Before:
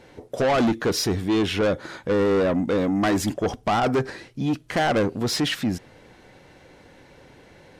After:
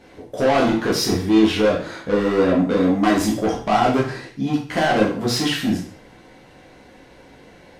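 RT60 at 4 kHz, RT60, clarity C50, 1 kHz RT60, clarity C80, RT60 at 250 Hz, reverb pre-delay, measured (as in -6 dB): 0.45 s, 0.45 s, 5.5 dB, 0.45 s, 10.0 dB, 0.50 s, 5 ms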